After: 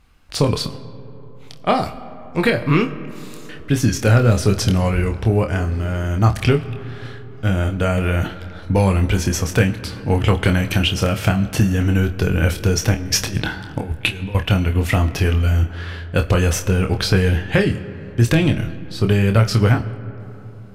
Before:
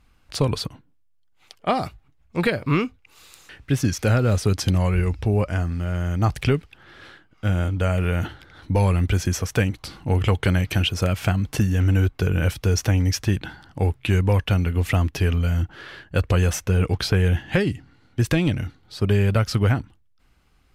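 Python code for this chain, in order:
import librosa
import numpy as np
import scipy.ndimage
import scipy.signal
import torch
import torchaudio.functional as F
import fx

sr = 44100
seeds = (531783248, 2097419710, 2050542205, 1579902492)

p1 = fx.over_compress(x, sr, threshold_db=-25.0, ratio=-0.5, at=(12.94, 14.35))
p2 = p1 + fx.room_early_taps(p1, sr, ms=(26, 51), db=(-6.5, -17.5), dry=0)
p3 = fx.rev_freeverb(p2, sr, rt60_s=3.8, hf_ratio=0.35, predelay_ms=35, drr_db=14.5)
y = p3 * librosa.db_to_amplitude(4.0)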